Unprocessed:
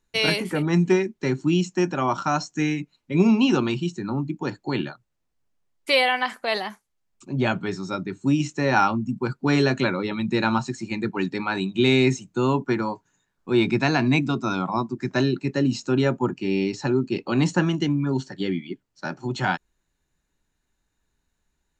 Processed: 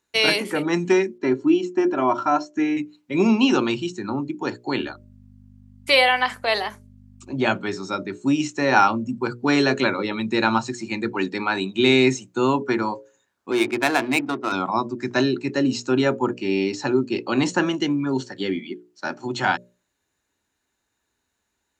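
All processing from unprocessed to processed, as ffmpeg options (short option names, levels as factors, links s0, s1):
-filter_complex "[0:a]asettb=1/sr,asplit=3[s0][s1][s2];[s0]atrim=end=1.184[s3];[s1]atrim=start=1.18:end=2.77,asetpts=PTS-STARTPTS,afade=t=in:d=0.004:c=qsin,afade=t=out:st=1.586:d=0.004:c=qsin,lowpass=f=1200:p=1,aecho=1:1:3:0.66,atrim=end_sample=70119[s4];[s2]atrim=start=2.766[s5];[s3][s4]acrossfade=d=0.004:c1=hsin:c2=qsin[s6];[s6][s5]acrossfade=d=0.004:c1=qsin:c2=hsin,asettb=1/sr,asplit=3[s7][s8][s9];[s7]atrim=end=4.804[s10];[s8]atrim=start=4.8:end=7.33,asetpts=PTS-STARTPTS,afade=t=in:d=0.004:c=qsin,afade=t=out:st=2.526:d=0.004:c=qsin,highpass=240,aeval=exprs='val(0)+0.00891*(sin(2*PI*50*n/s)+sin(2*PI*2*50*n/s)/2+sin(2*PI*3*50*n/s)/3+sin(2*PI*4*50*n/s)/4+sin(2*PI*5*50*n/s)/5)':c=same[s11];[s9]atrim=start=7.326[s12];[s10][s11]acrossfade=d=0.004:c1=hsin:c2=qsin[s13];[s13][s12]acrossfade=d=0.004:c1=qsin:c2=hsin,asettb=1/sr,asplit=3[s14][s15][s16];[s14]atrim=end=13.514[s17];[s15]atrim=start=13.51:end=14.52,asetpts=PTS-STARTPTS,afade=t=in:d=0.004:c=qsin,afade=t=out:st=1.006:d=0.004:c=qsin,highpass=f=140:w=0.5412,highpass=f=140:w=1.3066,adynamicsmooth=sensitivity=2.5:basefreq=790,equalizer=f=190:w=2.4:g=-15[s18];[s16]atrim=start=14.516[s19];[s17][s18]acrossfade=d=0.004:c1=hsin:c2=qsin[s20];[s20][s19]acrossfade=d=0.004:c1=qsin:c2=hsin,highpass=110,equalizer=f=160:t=o:w=0.53:g=-12.5,bandreject=f=60:t=h:w=6,bandreject=f=120:t=h:w=6,bandreject=f=180:t=h:w=6,bandreject=f=240:t=h:w=6,bandreject=f=300:t=h:w=6,bandreject=f=360:t=h:w=6,bandreject=f=420:t=h:w=6,bandreject=f=480:t=h:w=6,bandreject=f=540:t=h:w=6,bandreject=f=600:t=h:w=6,volume=1.5"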